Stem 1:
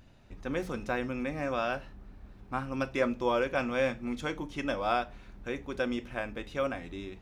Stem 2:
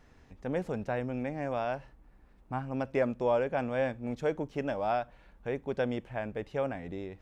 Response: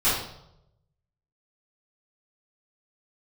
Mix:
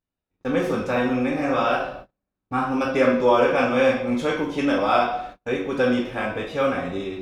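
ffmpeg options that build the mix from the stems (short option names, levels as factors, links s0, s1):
-filter_complex "[0:a]highpass=190,volume=1.19,asplit=2[s0][s1];[s1]volume=0.398[s2];[1:a]tiltshelf=f=1300:g=5,volume=1.06[s3];[2:a]atrim=start_sample=2205[s4];[s2][s4]afir=irnorm=-1:irlink=0[s5];[s0][s3][s5]amix=inputs=3:normalize=0,agate=range=0.0141:threshold=0.0141:ratio=16:detection=peak"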